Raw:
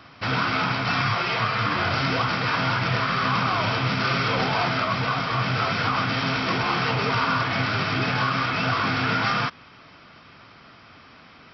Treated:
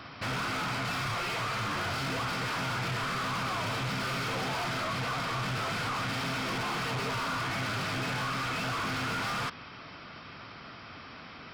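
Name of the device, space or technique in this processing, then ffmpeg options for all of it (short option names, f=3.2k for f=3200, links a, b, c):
saturation between pre-emphasis and de-emphasis: -af "highshelf=f=4.6k:g=9.5,asoftclip=type=tanh:threshold=-32.5dB,highshelf=f=4.6k:g=-9.5,volume=2.5dB"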